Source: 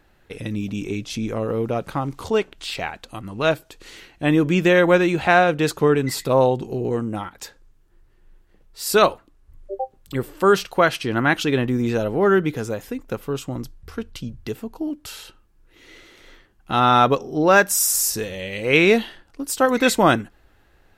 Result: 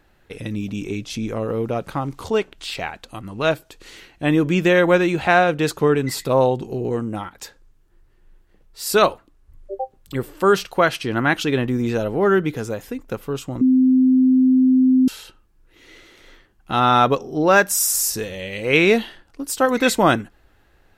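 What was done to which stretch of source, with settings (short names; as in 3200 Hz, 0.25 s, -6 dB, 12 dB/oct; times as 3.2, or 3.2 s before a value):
13.61–15.08 bleep 258 Hz -11 dBFS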